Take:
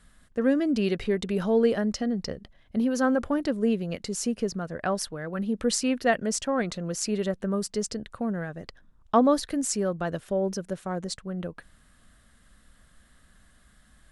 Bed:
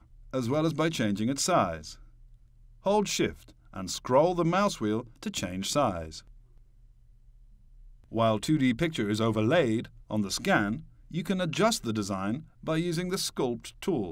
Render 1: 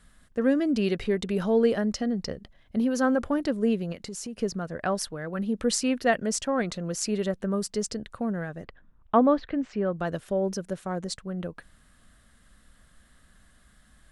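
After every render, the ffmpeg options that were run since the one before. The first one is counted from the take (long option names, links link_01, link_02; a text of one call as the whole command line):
ffmpeg -i in.wav -filter_complex "[0:a]asettb=1/sr,asplit=3[link_01][link_02][link_03];[link_01]atrim=end=3.924[link_04];[link_02]atrim=start=3.92:end=4.39,asetpts=PTS-STARTPTS,afade=type=in:duration=0.004:curve=qsin,afade=type=out:start_time=0.466:duration=0.004:curve=qsin,acompressor=threshold=-34dB:ratio=4:attack=3.2:release=140:knee=1:detection=peak[link_05];[link_03]atrim=start=4.386[link_06];[link_04][link_05]acrossfade=duration=0.004:curve1=hsin:curve2=qsin[link_07];[link_07][link_06]acrossfade=duration=0.004:curve1=qsin:curve2=hsin,asettb=1/sr,asplit=3[link_08][link_09][link_10];[link_08]atrim=end=8.644[link_11];[link_09]atrim=start=8.64:end=9.93,asetpts=PTS-STARTPTS,afade=type=in:duration=0.004:curve=qsin,afade=type=out:start_time=1.286:duration=0.004:curve=qsin,lowpass=frequency=3000:width=0.5412,lowpass=frequency=3000:width=1.3066[link_12];[link_10]atrim=start=9.926[link_13];[link_11][link_12]acrossfade=duration=0.004:curve1=hsin:curve2=qsin[link_14];[link_14][link_13]acrossfade=duration=0.004:curve1=qsin:curve2=hsin" out.wav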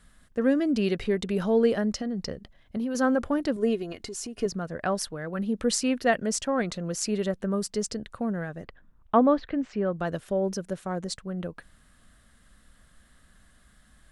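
ffmpeg -i in.wav -filter_complex "[0:a]asettb=1/sr,asplit=3[link_01][link_02][link_03];[link_01]atrim=end=1.974[link_04];[link_02]atrim=start=1.97:end=2.95,asetpts=PTS-STARTPTS,afade=type=in:duration=0.004:curve=qsin,afade=type=out:start_time=0.976:duration=0.004:curve=qsin,acompressor=threshold=-26dB:ratio=6:attack=3.2:release=140:knee=1:detection=peak[link_05];[link_03]atrim=start=2.946[link_06];[link_04][link_05]acrossfade=duration=0.004:curve1=hsin:curve2=qsin[link_07];[link_07][link_06]acrossfade=duration=0.004:curve1=qsin:curve2=hsin,asettb=1/sr,asplit=3[link_08][link_09][link_10];[link_08]atrim=end=3.564[link_11];[link_09]atrim=start=3.56:end=4.46,asetpts=PTS-STARTPTS,afade=type=in:duration=0.004:curve=qsin,afade=type=out:start_time=0.896:duration=0.004:curve=qsin,aecho=1:1:2.8:0.65,atrim=end_sample=39690[link_12];[link_10]atrim=start=4.456[link_13];[link_11][link_12]acrossfade=duration=0.004:curve1=hsin:curve2=qsin[link_14];[link_14][link_13]acrossfade=duration=0.004:curve1=qsin:curve2=hsin" out.wav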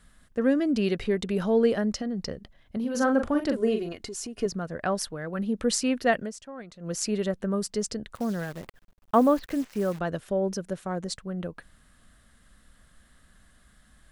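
ffmpeg -i in.wav -filter_complex "[0:a]asettb=1/sr,asplit=3[link_01][link_02][link_03];[link_01]atrim=end=2.804[link_04];[link_02]atrim=start=2.8:end=3.89,asetpts=PTS-STARTPTS,afade=type=in:duration=0.004:curve=qsin,afade=type=out:start_time=1.086:duration=0.004:curve=qsin,asplit=2[link_05][link_06];[link_06]adelay=41,volume=-6dB[link_07];[link_05][link_07]amix=inputs=2:normalize=0,atrim=end_sample=48069[link_08];[link_03]atrim=start=3.886[link_09];[link_04][link_08]acrossfade=duration=0.004:curve1=hsin:curve2=qsin[link_10];[link_10][link_09]acrossfade=duration=0.004:curve1=qsin:curve2=hsin,asettb=1/sr,asplit=3[link_11][link_12][link_13];[link_11]atrim=end=8.154[link_14];[link_12]atrim=start=8.15:end=9.99,asetpts=PTS-STARTPTS,afade=type=in:duration=0.004:curve=qsin,afade=type=out:start_time=1.836:duration=0.004:curve=qsin,acrusher=bits=8:dc=4:mix=0:aa=0.000001[link_15];[link_13]atrim=start=9.986[link_16];[link_14][link_15]acrossfade=duration=0.004:curve1=hsin:curve2=qsin[link_17];[link_17][link_16]acrossfade=duration=0.004:curve1=qsin:curve2=hsin,asplit=3[link_18][link_19][link_20];[link_18]atrim=end=6.32,asetpts=PTS-STARTPTS,afade=type=out:start_time=6.2:duration=0.12:silence=0.188365[link_21];[link_19]atrim=start=6.32:end=6.79,asetpts=PTS-STARTPTS,volume=-14.5dB[link_22];[link_20]atrim=start=6.79,asetpts=PTS-STARTPTS,afade=type=in:duration=0.12:silence=0.188365[link_23];[link_21][link_22][link_23]concat=n=3:v=0:a=1" out.wav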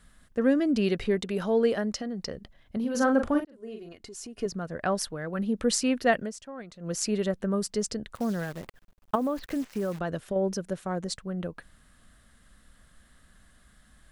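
ffmpeg -i in.wav -filter_complex "[0:a]asettb=1/sr,asplit=3[link_01][link_02][link_03];[link_01]atrim=end=1.194[link_04];[link_02]atrim=start=1.19:end=2.34,asetpts=PTS-STARTPTS,afade=type=in:duration=0.004:curve=qsin,afade=type=out:start_time=1.146:duration=0.004:curve=qsin,lowshelf=frequency=230:gain=-7[link_05];[link_03]atrim=start=2.336[link_06];[link_04][link_05]acrossfade=duration=0.004:curve1=hsin:curve2=qsin[link_07];[link_07][link_06]acrossfade=duration=0.004:curve1=qsin:curve2=hsin,asettb=1/sr,asplit=3[link_08][link_09][link_10];[link_08]atrim=end=9.154[link_11];[link_09]atrim=start=9.15:end=10.36,asetpts=PTS-STARTPTS,afade=type=in:duration=0.004:curve=qsin,afade=type=out:start_time=1.206:duration=0.004:curve=qsin,acompressor=threshold=-25dB:ratio=5:attack=3.2:release=140:knee=1:detection=peak[link_12];[link_10]atrim=start=10.356[link_13];[link_11][link_12]acrossfade=duration=0.004:curve1=hsin:curve2=qsin[link_14];[link_14][link_13]acrossfade=duration=0.004:curve1=qsin:curve2=hsin,asplit=2[link_15][link_16];[link_15]atrim=end=3.45,asetpts=PTS-STARTPTS,afade=type=out:start_time=3.446:duration=0.004:curve=hsin[link_17];[link_16]atrim=start=3.45,asetpts=PTS-STARTPTS,afade=type=in:duration=1.42[link_18];[link_17][link_18]concat=n=2:v=0:a=1" out.wav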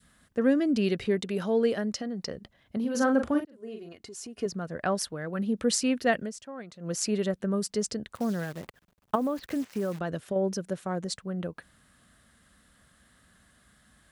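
ffmpeg -i in.wav -af "highpass=77,adynamicequalizer=threshold=0.0126:dfrequency=930:dqfactor=0.79:tfrequency=930:tqfactor=0.79:attack=5:release=100:ratio=0.375:range=2.5:mode=cutabove:tftype=bell" out.wav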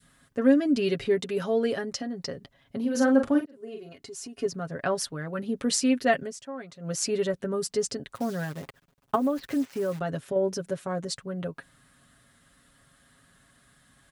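ffmpeg -i in.wav -af "aecho=1:1:7.3:0.65" out.wav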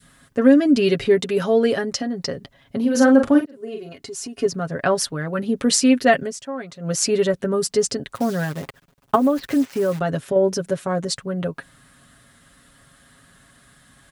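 ffmpeg -i in.wav -af "volume=8dB,alimiter=limit=-3dB:level=0:latency=1" out.wav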